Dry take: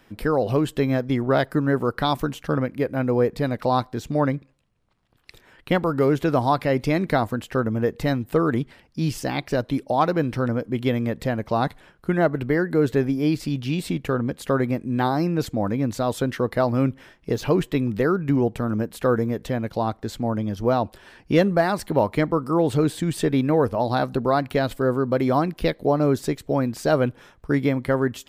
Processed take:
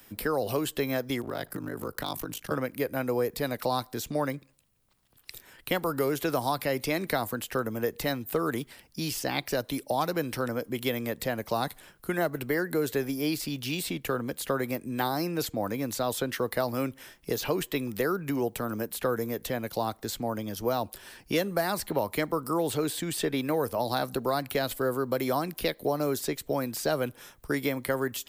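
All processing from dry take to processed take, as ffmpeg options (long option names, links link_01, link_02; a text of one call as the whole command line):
ffmpeg -i in.wav -filter_complex "[0:a]asettb=1/sr,asplit=3[link_01][link_02][link_03];[link_01]atrim=end=1.214[link_04];[link_02]atrim=start=1.21:end=2.51,asetpts=PTS-STARTPTS,afade=type=in:duration=0.004:curve=qsin,afade=type=out:start_time=1.296:duration=0.004:curve=qsin,aeval=exprs='val(0)*sin(2*PI*26*n/s)':channel_layout=same,acompressor=threshold=-24dB:ratio=20:attack=3.2:release=140:knee=1:detection=peak,aeval=exprs='0.112*(abs(mod(val(0)/0.112+3,4)-2)-1)':channel_layout=same[link_05];[link_03]atrim=start=2.506[link_06];[link_04][link_05]acrossfade=duration=0.004:curve1=hsin:curve2=qsin[link_07];[link_07][link_06]acrossfade=duration=0.004:curve1=qsin:curve2=hsin,aemphasis=mode=production:type=50fm,acrossover=split=150|310|4600[link_08][link_09][link_10][link_11];[link_08]acompressor=threshold=-41dB:ratio=4[link_12];[link_09]acompressor=threshold=-38dB:ratio=4[link_13];[link_10]acompressor=threshold=-22dB:ratio=4[link_14];[link_11]acompressor=threshold=-40dB:ratio=4[link_15];[link_12][link_13][link_14][link_15]amix=inputs=4:normalize=0,highshelf=frequency=4400:gain=6,volume=-3dB" out.wav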